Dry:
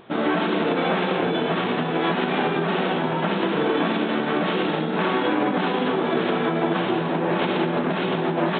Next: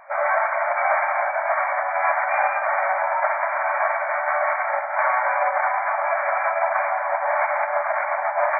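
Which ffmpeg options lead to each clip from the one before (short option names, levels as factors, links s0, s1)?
-af "afftfilt=real='re*between(b*sr/4096,550,2400)':imag='im*between(b*sr/4096,550,2400)':win_size=4096:overlap=0.75,volume=1.88"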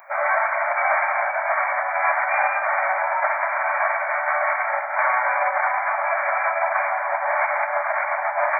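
-af "aemphasis=mode=production:type=riaa"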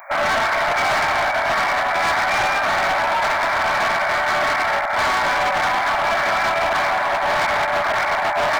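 -af "volume=14.1,asoftclip=hard,volume=0.0708,volume=2.11"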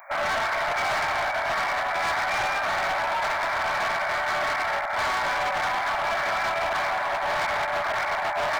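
-af "equalizer=f=250:t=o:w=0.89:g=-4,volume=0.473"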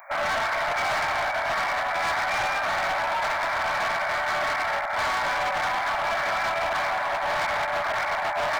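-af "bandreject=f=390:w=12"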